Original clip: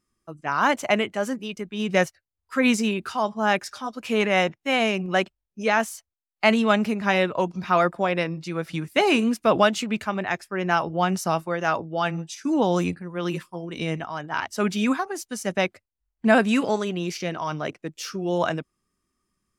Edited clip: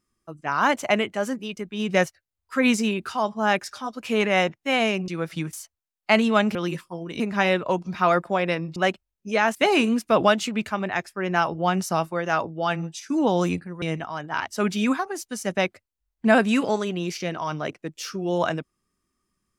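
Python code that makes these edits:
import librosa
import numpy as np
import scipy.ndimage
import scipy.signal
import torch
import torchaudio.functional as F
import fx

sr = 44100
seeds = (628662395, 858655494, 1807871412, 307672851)

y = fx.edit(x, sr, fx.swap(start_s=5.08, length_s=0.79, other_s=8.45, other_length_s=0.45),
    fx.move(start_s=13.17, length_s=0.65, to_s=6.89), tone=tone)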